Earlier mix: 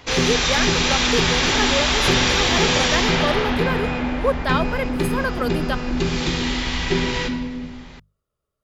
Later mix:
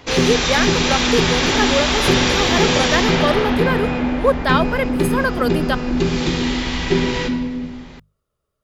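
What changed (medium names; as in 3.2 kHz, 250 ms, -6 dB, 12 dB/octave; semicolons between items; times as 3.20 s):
speech +4.5 dB; background: add peaking EQ 300 Hz +5 dB 2.4 oct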